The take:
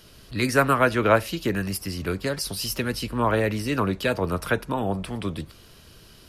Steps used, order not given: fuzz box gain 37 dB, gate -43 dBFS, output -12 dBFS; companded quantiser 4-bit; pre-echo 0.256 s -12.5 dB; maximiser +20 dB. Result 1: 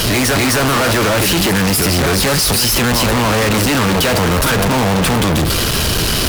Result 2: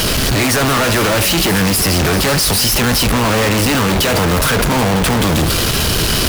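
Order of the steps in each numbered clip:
pre-echo > maximiser > companded quantiser > fuzz box; maximiser > fuzz box > pre-echo > companded quantiser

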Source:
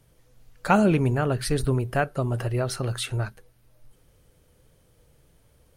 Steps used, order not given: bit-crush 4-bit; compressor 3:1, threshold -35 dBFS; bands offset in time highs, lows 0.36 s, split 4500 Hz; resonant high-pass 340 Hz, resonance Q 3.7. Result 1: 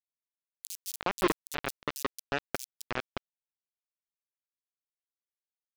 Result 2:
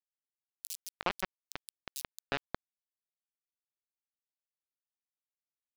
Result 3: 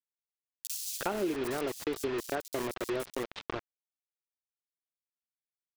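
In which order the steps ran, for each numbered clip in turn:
compressor > resonant high-pass > bit-crush > bands offset in time; resonant high-pass > compressor > bit-crush > bands offset in time; resonant high-pass > bit-crush > bands offset in time > compressor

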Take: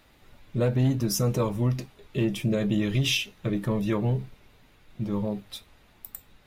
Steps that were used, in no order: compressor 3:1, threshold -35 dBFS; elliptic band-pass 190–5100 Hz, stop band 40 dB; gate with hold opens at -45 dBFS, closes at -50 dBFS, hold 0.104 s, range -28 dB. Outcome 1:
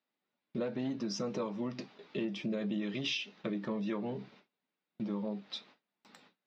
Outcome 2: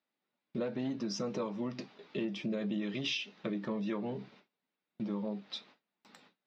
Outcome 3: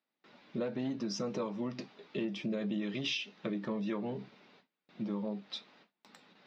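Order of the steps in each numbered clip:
elliptic band-pass > compressor > gate with hold; elliptic band-pass > gate with hold > compressor; gate with hold > elliptic band-pass > compressor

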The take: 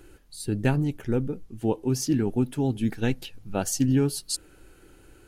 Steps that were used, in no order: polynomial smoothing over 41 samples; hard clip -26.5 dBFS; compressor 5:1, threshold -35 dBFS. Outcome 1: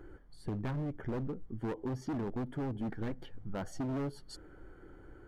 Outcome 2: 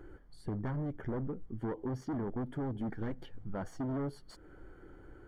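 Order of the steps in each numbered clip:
polynomial smoothing > hard clip > compressor; hard clip > compressor > polynomial smoothing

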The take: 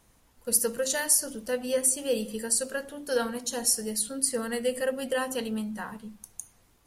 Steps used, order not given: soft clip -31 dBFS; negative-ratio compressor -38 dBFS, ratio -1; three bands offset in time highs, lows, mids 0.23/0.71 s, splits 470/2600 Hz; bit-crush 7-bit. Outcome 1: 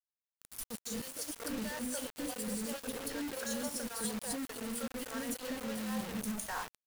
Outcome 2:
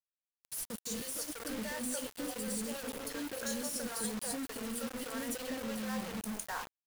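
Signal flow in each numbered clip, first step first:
negative-ratio compressor > soft clip > three bands offset in time > bit-crush; soft clip > negative-ratio compressor > three bands offset in time > bit-crush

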